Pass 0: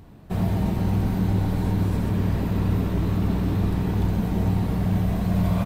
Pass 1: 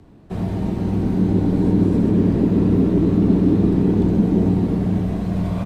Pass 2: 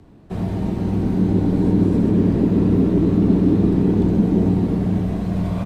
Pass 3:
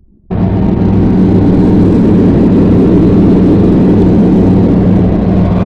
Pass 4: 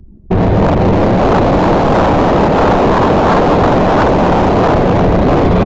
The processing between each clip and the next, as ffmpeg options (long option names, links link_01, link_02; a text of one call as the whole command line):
ffmpeg -i in.wav -filter_complex "[0:a]lowpass=9500,equalizer=frequency=330:width_type=o:width=1.3:gain=6.5,acrossover=split=170|450|1800[link_01][link_02][link_03][link_04];[link_02]dynaudnorm=framelen=260:gausssize=9:maxgain=13dB[link_05];[link_01][link_05][link_03][link_04]amix=inputs=4:normalize=0,volume=-2.5dB" out.wav
ffmpeg -i in.wav -af anull out.wav
ffmpeg -i in.wav -filter_complex "[0:a]asplit=8[link_01][link_02][link_03][link_04][link_05][link_06][link_07][link_08];[link_02]adelay=481,afreqshift=64,volume=-15dB[link_09];[link_03]adelay=962,afreqshift=128,volume=-19dB[link_10];[link_04]adelay=1443,afreqshift=192,volume=-23dB[link_11];[link_05]adelay=1924,afreqshift=256,volume=-27dB[link_12];[link_06]adelay=2405,afreqshift=320,volume=-31.1dB[link_13];[link_07]adelay=2886,afreqshift=384,volume=-35.1dB[link_14];[link_08]adelay=3367,afreqshift=448,volume=-39.1dB[link_15];[link_01][link_09][link_10][link_11][link_12][link_13][link_14][link_15]amix=inputs=8:normalize=0,anlmdn=3.98,apsyclip=14.5dB,volume=-1.5dB" out.wav
ffmpeg -i in.wav -filter_complex "[0:a]aphaser=in_gain=1:out_gain=1:delay=2.9:decay=0.25:speed=1.5:type=triangular,acrossover=split=660[link_01][link_02];[link_01]aeval=exprs='0.335*(abs(mod(val(0)/0.335+3,4)-2)-1)':channel_layout=same[link_03];[link_03][link_02]amix=inputs=2:normalize=0,aresample=16000,aresample=44100,volume=4.5dB" out.wav